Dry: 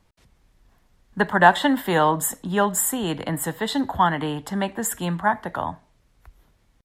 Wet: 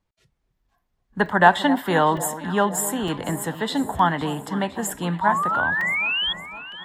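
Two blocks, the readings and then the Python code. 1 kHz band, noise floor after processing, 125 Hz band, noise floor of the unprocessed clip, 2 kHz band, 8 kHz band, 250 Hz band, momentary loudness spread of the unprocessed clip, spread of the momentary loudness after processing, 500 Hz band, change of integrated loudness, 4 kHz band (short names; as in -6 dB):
+1.0 dB, -74 dBFS, +0.5 dB, -63 dBFS, +3.0 dB, -2.5 dB, +0.5 dB, 11 LU, 10 LU, +0.5 dB, +0.5 dB, +4.5 dB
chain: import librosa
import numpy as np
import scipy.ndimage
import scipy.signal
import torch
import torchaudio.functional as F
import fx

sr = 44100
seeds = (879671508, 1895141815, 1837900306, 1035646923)

y = fx.spec_paint(x, sr, seeds[0], shape='rise', start_s=5.21, length_s=1.12, low_hz=920.0, high_hz=3400.0, level_db=-23.0)
y = fx.high_shelf(y, sr, hz=9100.0, db=-6.5)
y = fx.noise_reduce_blind(y, sr, reduce_db=14)
y = fx.echo_alternate(y, sr, ms=255, hz=970.0, feedback_pct=76, wet_db=-13.0)
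y = fx.buffer_crackle(y, sr, first_s=0.35, period_s=0.91, block=128, kind='zero')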